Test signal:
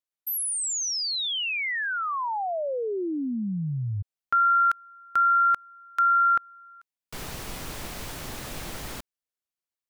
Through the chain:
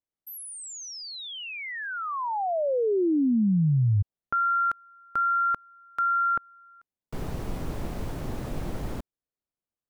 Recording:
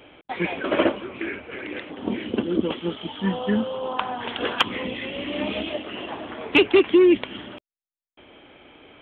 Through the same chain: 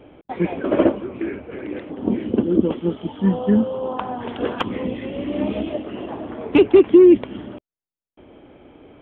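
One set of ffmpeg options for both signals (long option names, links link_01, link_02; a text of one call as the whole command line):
ffmpeg -i in.wav -af "tiltshelf=frequency=1100:gain=9.5,volume=-2dB" out.wav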